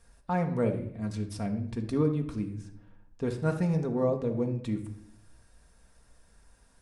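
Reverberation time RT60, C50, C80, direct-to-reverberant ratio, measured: 0.70 s, 10.0 dB, 13.5 dB, 3.0 dB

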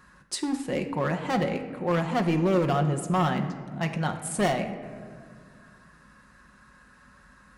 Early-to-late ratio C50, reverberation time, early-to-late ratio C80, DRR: 9.5 dB, 1.9 s, 10.5 dB, 4.0 dB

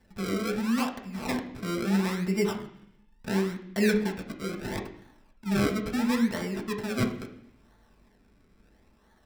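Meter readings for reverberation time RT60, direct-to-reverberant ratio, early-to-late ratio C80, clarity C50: 0.65 s, 1.5 dB, 13.0 dB, 10.0 dB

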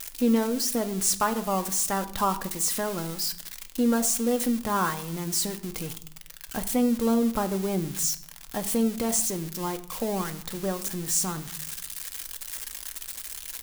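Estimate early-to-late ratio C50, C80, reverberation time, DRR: 15.5 dB, 18.0 dB, 0.60 s, 7.0 dB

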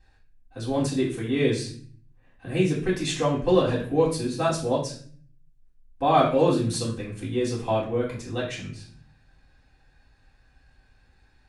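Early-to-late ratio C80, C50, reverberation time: 10.5 dB, 6.5 dB, 0.50 s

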